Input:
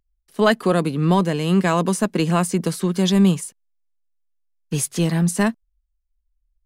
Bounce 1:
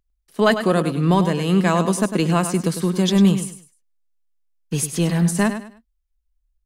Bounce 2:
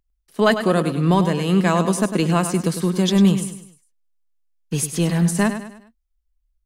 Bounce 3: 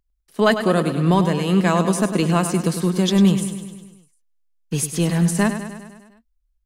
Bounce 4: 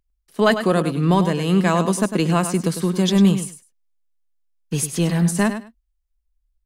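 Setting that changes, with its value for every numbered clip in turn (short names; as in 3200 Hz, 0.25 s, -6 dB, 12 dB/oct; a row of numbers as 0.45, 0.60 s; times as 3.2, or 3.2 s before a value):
feedback echo, feedback: 28, 41, 61, 17%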